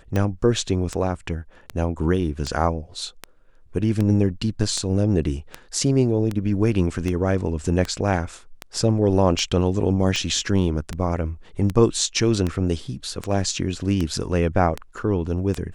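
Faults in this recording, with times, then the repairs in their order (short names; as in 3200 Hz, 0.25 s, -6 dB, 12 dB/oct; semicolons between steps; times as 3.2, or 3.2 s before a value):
tick 78 rpm -12 dBFS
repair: de-click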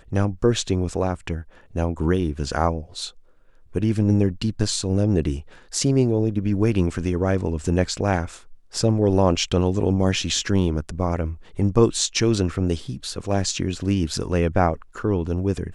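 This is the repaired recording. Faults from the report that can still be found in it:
none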